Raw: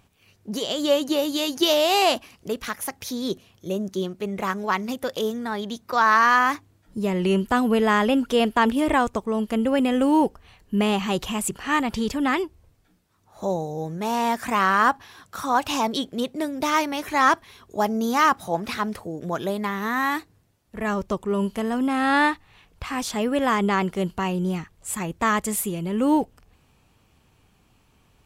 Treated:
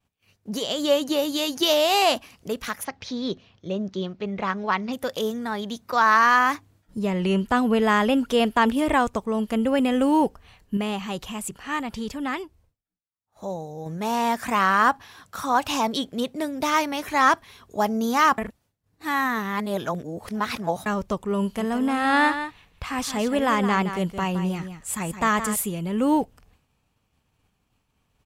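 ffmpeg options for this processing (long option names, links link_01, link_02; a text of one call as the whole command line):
ffmpeg -i in.wav -filter_complex "[0:a]asplit=3[link_01][link_02][link_03];[link_01]afade=type=out:start_time=2.83:duration=0.02[link_04];[link_02]lowpass=frequency=5000:width=0.5412,lowpass=frequency=5000:width=1.3066,afade=type=in:start_time=2.83:duration=0.02,afade=type=out:start_time=4.92:duration=0.02[link_05];[link_03]afade=type=in:start_time=4.92:duration=0.02[link_06];[link_04][link_05][link_06]amix=inputs=3:normalize=0,asettb=1/sr,asplit=3[link_07][link_08][link_09];[link_07]atrim=end=6.994[link_10];[link_08]atrim=start=6.99:end=7.82,asetpts=PTS-STARTPTS,afade=type=in:duration=0.004:curve=qsin,afade=type=out:start_time=0.826:duration=0.004:curve=qsin,highshelf=frequency=11000:gain=-10.5[link_11];[link_09]atrim=start=7.816[link_12];[link_10][link_11]acrossfade=duration=0.004:curve1=hsin:curve2=qsin[link_13];[link_13][link_12]acrossfade=duration=0.004:curve1=qsin:curve2=hsin,asplit=3[link_14][link_15][link_16];[link_14]afade=type=out:start_time=21.59:duration=0.02[link_17];[link_15]aecho=1:1:167:0.316,afade=type=in:start_time=21.59:duration=0.02,afade=type=out:start_time=25.61:duration=0.02[link_18];[link_16]afade=type=in:start_time=25.61:duration=0.02[link_19];[link_17][link_18][link_19]amix=inputs=3:normalize=0,asplit=5[link_20][link_21][link_22][link_23][link_24];[link_20]atrim=end=10.772[link_25];[link_21]atrim=start=10.768:end=13.862,asetpts=PTS-STARTPTS,volume=-5.5dB[link_26];[link_22]atrim=start=13.858:end=18.382[link_27];[link_23]atrim=start=18.378:end=20.862,asetpts=PTS-STARTPTS,areverse[link_28];[link_24]atrim=start=20.858[link_29];[link_25][link_26]acrossfade=duration=0.004:curve1=hsin:curve2=hsin[link_30];[link_30][link_27]acrossfade=duration=0.004:curve1=hsin:curve2=hsin[link_31];[link_31][link_28]acrossfade=duration=0.004:curve1=hsin:curve2=hsin[link_32];[link_32][link_29]acrossfade=duration=0.004:curve1=hsin:curve2=hsin,agate=range=-33dB:threshold=-52dB:ratio=3:detection=peak,equalizer=frequency=360:width_type=o:width=0.3:gain=-4.5" out.wav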